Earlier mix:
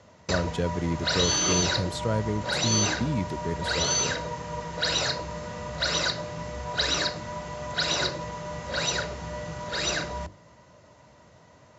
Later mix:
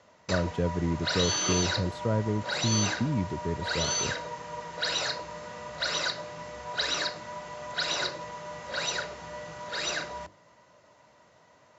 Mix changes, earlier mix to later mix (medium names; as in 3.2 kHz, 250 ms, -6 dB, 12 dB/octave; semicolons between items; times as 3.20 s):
background: add tilt EQ +4 dB/octave; master: add low-pass 1.1 kHz 6 dB/octave